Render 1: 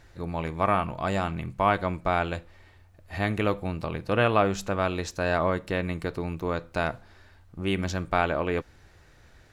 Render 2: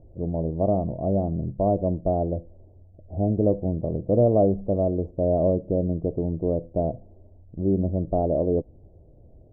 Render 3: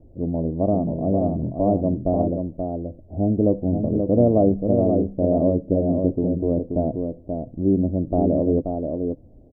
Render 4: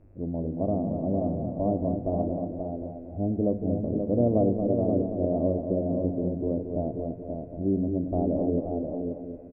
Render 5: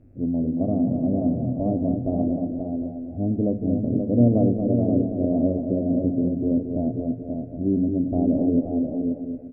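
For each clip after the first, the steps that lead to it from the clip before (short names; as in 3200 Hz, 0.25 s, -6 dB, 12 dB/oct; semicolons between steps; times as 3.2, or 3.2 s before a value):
elliptic low-pass 640 Hz, stop band 60 dB; gain +6 dB
bell 260 Hz +9 dB 0.54 oct; echo 0.53 s -5.5 dB; gate with hold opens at -45 dBFS
buzz 100 Hz, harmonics 27, -56 dBFS -8 dB/oct; feedback echo 0.228 s, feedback 42%, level -7 dB; reverb RT60 2.0 s, pre-delay 51 ms, DRR 15.5 dB; gain -7 dB
thirty-one-band EQ 125 Hz +11 dB, 250 Hz +11 dB, 1000 Hz -11 dB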